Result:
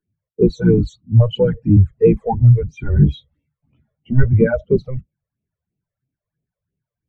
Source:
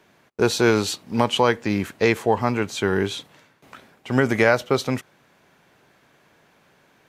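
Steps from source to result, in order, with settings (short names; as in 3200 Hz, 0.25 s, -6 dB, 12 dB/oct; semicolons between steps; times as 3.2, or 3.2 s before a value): octaver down 1 oct, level 0 dB; phaser stages 12, 3 Hz, lowest notch 250–1500 Hz; power-law curve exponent 0.7; in parallel at -4.5 dB: overloaded stage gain 25 dB; 2.8–4.26 on the sum: doubler 14 ms -3.5 dB; spectral expander 2.5:1; gain +3.5 dB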